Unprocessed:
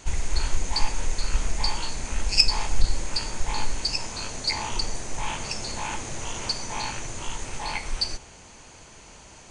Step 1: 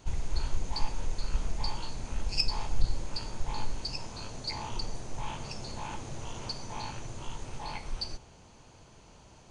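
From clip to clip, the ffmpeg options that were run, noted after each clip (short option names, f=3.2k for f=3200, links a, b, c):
-af "equalizer=f=125:t=o:w=1:g=5,equalizer=f=2k:t=o:w=1:g=-7,equalizer=f=8k:t=o:w=1:g=-10,volume=-6dB"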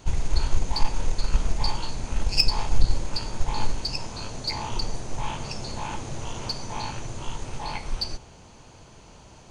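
-af "aeval=exprs='0.251*(cos(1*acos(clip(val(0)/0.251,-1,1)))-cos(1*PI/2))+0.0126*(cos(5*acos(clip(val(0)/0.251,-1,1)))-cos(5*PI/2))+0.0141*(cos(7*acos(clip(val(0)/0.251,-1,1)))-cos(7*PI/2))':c=same,volume=7.5dB"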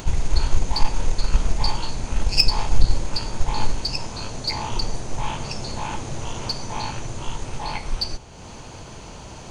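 -af "acompressor=mode=upward:threshold=-33dB:ratio=2.5,volume=3.5dB"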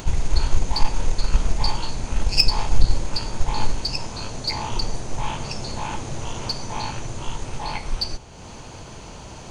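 -af anull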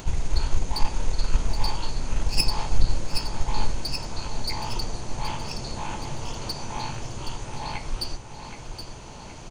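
-filter_complex "[0:a]acrossover=split=1900[a][b];[b]aeval=exprs='clip(val(0),-1,0.0596)':c=same[c];[a][c]amix=inputs=2:normalize=0,aecho=1:1:772|1544|2316|3088|3860|4632:0.355|0.185|0.0959|0.0499|0.0259|0.0135,volume=-4dB"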